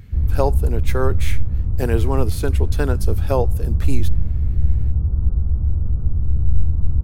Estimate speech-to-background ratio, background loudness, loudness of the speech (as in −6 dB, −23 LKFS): −3.5 dB, −22.0 LKFS, −25.5 LKFS